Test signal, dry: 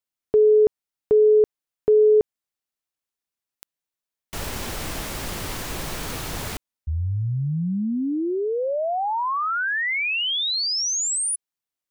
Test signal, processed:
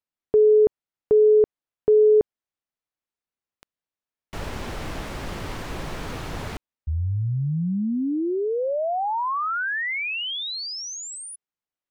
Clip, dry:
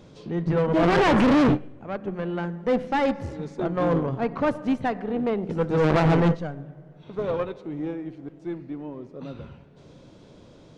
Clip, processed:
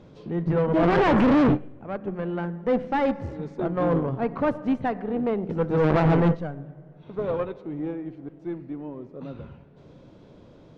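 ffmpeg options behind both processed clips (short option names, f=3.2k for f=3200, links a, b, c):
-af "aemphasis=mode=reproduction:type=75kf"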